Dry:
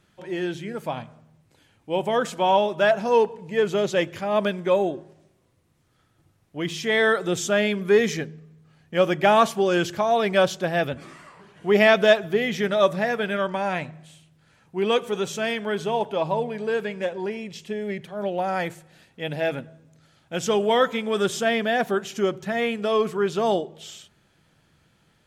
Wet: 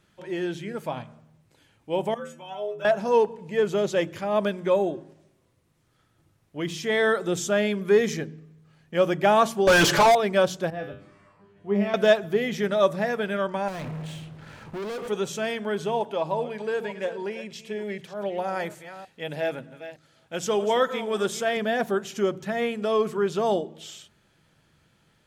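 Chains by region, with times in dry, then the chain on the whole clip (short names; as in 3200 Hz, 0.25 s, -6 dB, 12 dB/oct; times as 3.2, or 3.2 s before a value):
2.14–2.85 bell 4300 Hz -13.5 dB 0.41 oct + metallic resonator 76 Hz, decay 0.63 s, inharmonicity 0.008
9.67–10.15 comb 6.9 ms, depth 84% + overdrive pedal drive 29 dB, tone 4300 Hz, clips at -7.5 dBFS + overloaded stage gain 11.5 dB
10.7–11.94 tilt -2.5 dB/oct + resonator 100 Hz, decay 0.41 s, mix 90%
13.68–15.08 compressor 3:1, threshold -40 dBFS + LPF 1600 Hz 6 dB/oct + sample leveller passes 5
16.01–21.57 reverse delay 0.304 s, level -13 dB + low shelf 230 Hz -6.5 dB
whole clip: notch 740 Hz, Q 24; de-hum 45.41 Hz, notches 7; dynamic EQ 2600 Hz, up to -4 dB, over -36 dBFS, Q 0.8; gain -1 dB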